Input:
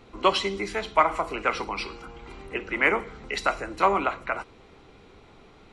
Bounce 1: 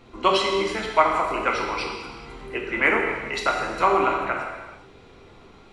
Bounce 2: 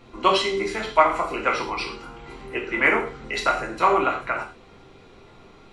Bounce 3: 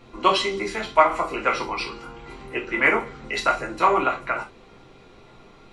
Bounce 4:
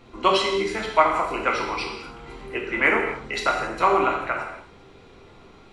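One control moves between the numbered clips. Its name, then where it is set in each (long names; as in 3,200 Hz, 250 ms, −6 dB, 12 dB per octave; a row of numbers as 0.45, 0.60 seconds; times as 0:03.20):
reverb whose tail is shaped and stops, gate: 470, 150, 90, 300 milliseconds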